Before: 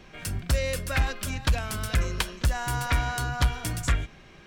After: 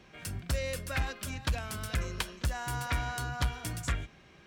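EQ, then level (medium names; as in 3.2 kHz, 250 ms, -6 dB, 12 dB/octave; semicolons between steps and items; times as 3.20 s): high-pass 50 Hz; -6.0 dB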